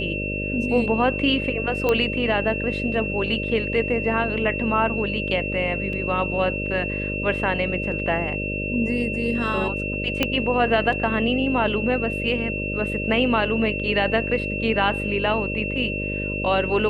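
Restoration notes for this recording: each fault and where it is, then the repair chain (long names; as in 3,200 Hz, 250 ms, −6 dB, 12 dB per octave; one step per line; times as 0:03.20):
mains buzz 50 Hz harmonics 12 −29 dBFS
whistle 2,700 Hz −28 dBFS
0:01.89: click −9 dBFS
0:05.93: drop-out 2.3 ms
0:10.23: click −6 dBFS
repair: click removal
hum removal 50 Hz, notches 12
notch filter 2,700 Hz, Q 30
repair the gap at 0:05.93, 2.3 ms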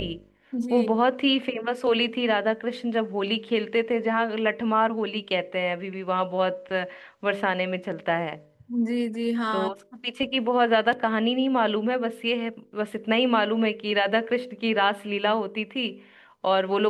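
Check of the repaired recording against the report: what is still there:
0:01.89: click
0:10.23: click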